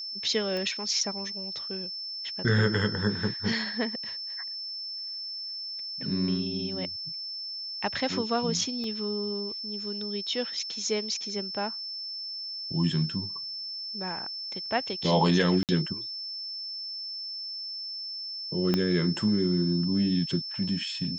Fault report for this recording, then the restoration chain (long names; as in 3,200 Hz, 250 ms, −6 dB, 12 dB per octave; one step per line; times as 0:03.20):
whistle 5,300 Hz −34 dBFS
0:00.57: click −20 dBFS
0:08.84: drop-out 2.4 ms
0:15.63–0:15.69: drop-out 58 ms
0:18.74: click −12 dBFS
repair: click removal
notch filter 5,300 Hz, Q 30
repair the gap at 0:08.84, 2.4 ms
repair the gap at 0:15.63, 58 ms